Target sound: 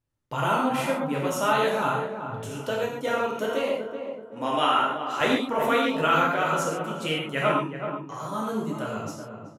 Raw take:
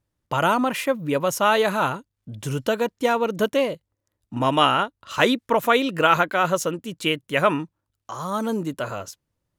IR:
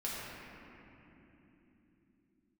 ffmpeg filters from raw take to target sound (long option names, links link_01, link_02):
-filter_complex "[0:a]asettb=1/sr,asplit=3[link_01][link_02][link_03];[link_01]atrim=end=2.464[link_04];[link_02]atrim=start=2.46:end=5.21,asetpts=PTS-STARTPTS,afade=type=in:duration=0.004:curve=qsin,afade=type=out:start_time=2.746:duration=0.004:curve=qsin,highpass=290[link_05];[link_03]atrim=start=5.206[link_06];[link_04][link_05]acrossfade=duration=0.004:curve1=hsin:curve2=qsin[link_07];[link_07][link_06]acrossfade=duration=0.004:curve1=qsin:curve2=hsin,asplit=2[link_08][link_09];[link_09]adelay=379,lowpass=frequency=1100:poles=1,volume=-6.5dB,asplit=2[link_10][link_11];[link_11]adelay=379,lowpass=frequency=1100:poles=1,volume=0.42,asplit=2[link_12][link_13];[link_13]adelay=379,lowpass=frequency=1100:poles=1,volume=0.42,asplit=2[link_14][link_15];[link_15]adelay=379,lowpass=frequency=1100:poles=1,volume=0.42,asplit=2[link_16][link_17];[link_17]adelay=379,lowpass=frequency=1100:poles=1,volume=0.42[link_18];[link_08][link_10][link_12][link_14][link_16][link_18]amix=inputs=6:normalize=0[link_19];[1:a]atrim=start_sample=2205,atrim=end_sample=3969,asetrate=26019,aresample=44100[link_20];[link_19][link_20]afir=irnorm=-1:irlink=0,volume=-7.5dB"